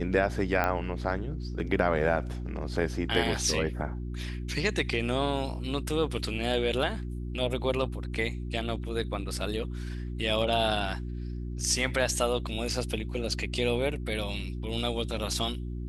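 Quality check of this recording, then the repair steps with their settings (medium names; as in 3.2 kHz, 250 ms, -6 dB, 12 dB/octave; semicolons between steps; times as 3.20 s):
hum 60 Hz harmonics 6 -35 dBFS
0.64 s: pop -14 dBFS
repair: de-click; de-hum 60 Hz, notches 6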